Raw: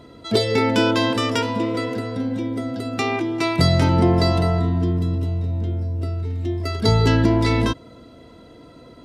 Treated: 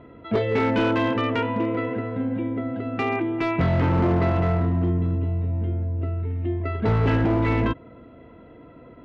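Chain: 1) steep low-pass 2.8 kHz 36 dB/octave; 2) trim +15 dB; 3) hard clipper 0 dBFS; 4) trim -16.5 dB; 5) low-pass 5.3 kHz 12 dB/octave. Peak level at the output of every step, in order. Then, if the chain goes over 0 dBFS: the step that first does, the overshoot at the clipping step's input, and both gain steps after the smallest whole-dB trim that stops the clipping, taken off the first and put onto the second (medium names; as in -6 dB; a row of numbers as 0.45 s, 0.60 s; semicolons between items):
-5.0 dBFS, +10.0 dBFS, 0.0 dBFS, -16.5 dBFS, -16.0 dBFS; step 2, 10.0 dB; step 2 +5 dB, step 4 -6.5 dB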